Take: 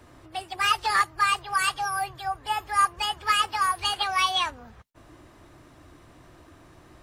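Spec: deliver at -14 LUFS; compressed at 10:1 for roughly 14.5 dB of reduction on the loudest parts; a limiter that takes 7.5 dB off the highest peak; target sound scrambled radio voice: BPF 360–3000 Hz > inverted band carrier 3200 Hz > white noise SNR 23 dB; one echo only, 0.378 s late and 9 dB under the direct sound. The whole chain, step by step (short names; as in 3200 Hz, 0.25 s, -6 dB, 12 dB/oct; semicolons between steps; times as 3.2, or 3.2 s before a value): compressor 10:1, threshold -32 dBFS; limiter -29.5 dBFS; BPF 360–3000 Hz; echo 0.378 s -9 dB; inverted band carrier 3200 Hz; white noise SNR 23 dB; gain +24.5 dB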